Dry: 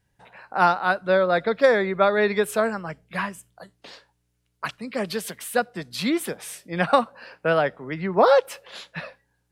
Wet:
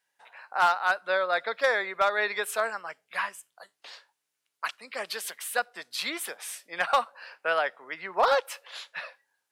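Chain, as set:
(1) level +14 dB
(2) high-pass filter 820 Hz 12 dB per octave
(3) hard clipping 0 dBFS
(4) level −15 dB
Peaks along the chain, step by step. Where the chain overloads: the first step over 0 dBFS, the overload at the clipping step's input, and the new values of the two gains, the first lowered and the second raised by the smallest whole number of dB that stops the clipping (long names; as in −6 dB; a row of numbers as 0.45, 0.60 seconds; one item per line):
+10.0, +7.0, 0.0, −15.0 dBFS
step 1, 7.0 dB
step 1 +7 dB, step 4 −8 dB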